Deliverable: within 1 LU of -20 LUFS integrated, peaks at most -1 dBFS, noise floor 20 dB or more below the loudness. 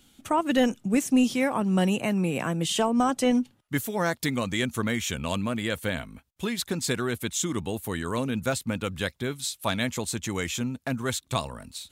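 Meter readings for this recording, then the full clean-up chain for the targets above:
loudness -27.5 LUFS; peak level -12.0 dBFS; loudness target -20.0 LUFS
-> trim +7.5 dB

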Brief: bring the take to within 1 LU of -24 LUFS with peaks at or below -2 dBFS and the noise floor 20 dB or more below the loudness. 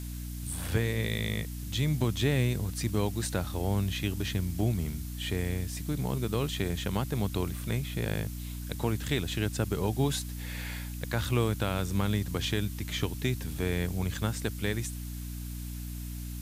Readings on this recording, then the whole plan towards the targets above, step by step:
hum 60 Hz; highest harmonic 300 Hz; hum level -35 dBFS; noise floor -38 dBFS; noise floor target -52 dBFS; loudness -32.0 LUFS; peak level -14.5 dBFS; loudness target -24.0 LUFS
-> de-hum 60 Hz, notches 5; noise reduction 14 dB, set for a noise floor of -38 dBFS; trim +8 dB

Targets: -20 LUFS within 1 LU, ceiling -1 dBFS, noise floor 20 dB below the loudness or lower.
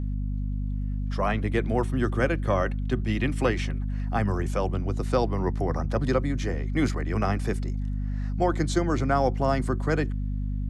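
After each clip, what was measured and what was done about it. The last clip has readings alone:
hum 50 Hz; highest harmonic 250 Hz; hum level -26 dBFS; loudness -27.0 LUFS; peak level -11.0 dBFS; loudness target -20.0 LUFS
-> de-hum 50 Hz, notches 5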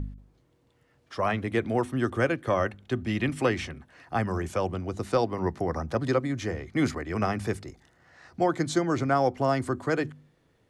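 hum not found; loudness -28.5 LUFS; peak level -12.5 dBFS; loudness target -20.0 LUFS
-> trim +8.5 dB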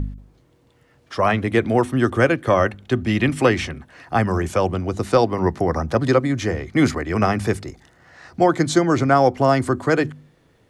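loudness -20.0 LUFS; peak level -4.0 dBFS; noise floor -58 dBFS

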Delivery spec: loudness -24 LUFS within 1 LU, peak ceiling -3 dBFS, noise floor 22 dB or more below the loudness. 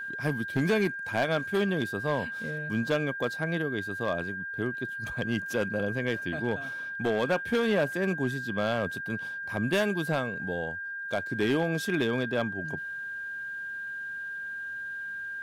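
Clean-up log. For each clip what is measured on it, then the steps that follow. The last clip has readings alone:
clipped samples 0.8%; clipping level -19.5 dBFS; steady tone 1.6 kHz; tone level -34 dBFS; loudness -30.0 LUFS; peak level -19.5 dBFS; loudness target -24.0 LUFS
-> clip repair -19.5 dBFS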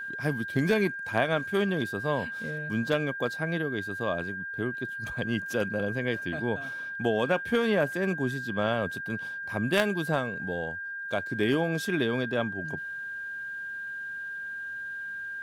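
clipped samples 0.0%; steady tone 1.6 kHz; tone level -34 dBFS
-> band-stop 1.6 kHz, Q 30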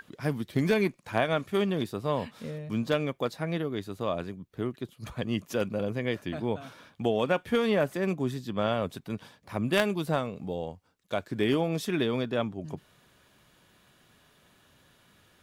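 steady tone not found; loudness -30.5 LUFS; peak level -10.5 dBFS; loudness target -24.0 LUFS
-> trim +6.5 dB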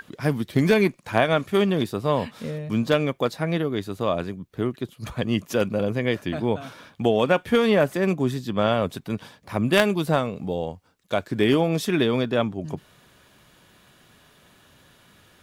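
loudness -24.0 LUFS; peak level -4.0 dBFS; noise floor -57 dBFS

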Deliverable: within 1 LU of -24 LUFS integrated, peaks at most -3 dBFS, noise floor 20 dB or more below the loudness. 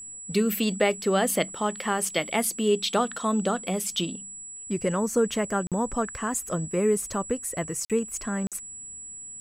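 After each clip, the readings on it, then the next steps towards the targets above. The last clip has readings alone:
dropouts 3; longest dropout 47 ms; steady tone 7.8 kHz; tone level -38 dBFS; loudness -26.5 LUFS; peak level -10.0 dBFS; loudness target -24.0 LUFS
-> interpolate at 5.67/7.85/8.47 s, 47 ms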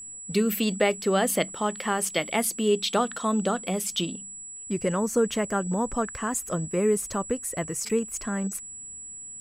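dropouts 0; steady tone 7.8 kHz; tone level -38 dBFS
-> band-stop 7.8 kHz, Q 30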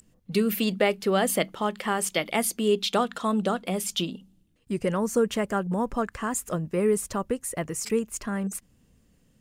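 steady tone not found; loudness -27.0 LUFS; peak level -10.0 dBFS; loudness target -24.0 LUFS
-> trim +3 dB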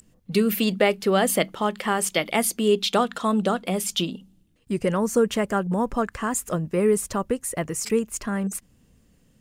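loudness -24.0 LUFS; peak level -7.0 dBFS; noise floor -61 dBFS

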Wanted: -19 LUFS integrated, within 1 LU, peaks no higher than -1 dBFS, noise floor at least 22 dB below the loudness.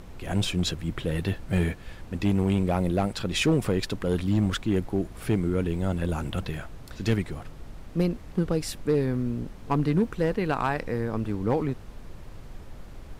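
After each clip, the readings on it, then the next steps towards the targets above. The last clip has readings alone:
clipped samples 0.6%; clipping level -16.0 dBFS; noise floor -44 dBFS; noise floor target -50 dBFS; loudness -27.5 LUFS; peak level -16.0 dBFS; loudness target -19.0 LUFS
-> clip repair -16 dBFS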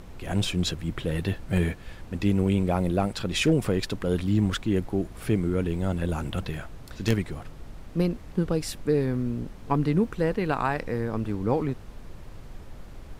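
clipped samples 0.0%; noise floor -44 dBFS; noise floor target -49 dBFS
-> noise print and reduce 6 dB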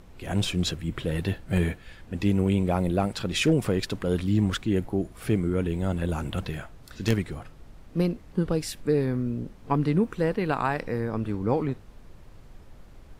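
noise floor -49 dBFS; loudness -27.0 LUFS; peak level -7.0 dBFS; loudness target -19.0 LUFS
-> trim +8 dB; peak limiter -1 dBFS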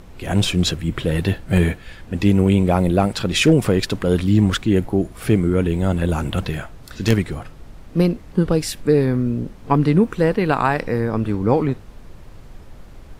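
loudness -19.0 LUFS; peak level -1.0 dBFS; noise floor -41 dBFS

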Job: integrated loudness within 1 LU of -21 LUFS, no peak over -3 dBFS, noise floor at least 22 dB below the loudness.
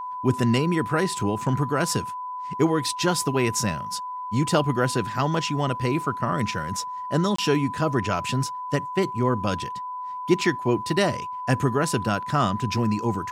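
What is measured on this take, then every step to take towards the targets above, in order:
dropouts 1; longest dropout 24 ms; steady tone 1 kHz; tone level -30 dBFS; loudness -24.5 LUFS; peak level -7.0 dBFS; loudness target -21.0 LUFS
-> interpolate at 7.36 s, 24 ms; band-stop 1 kHz, Q 30; trim +3.5 dB

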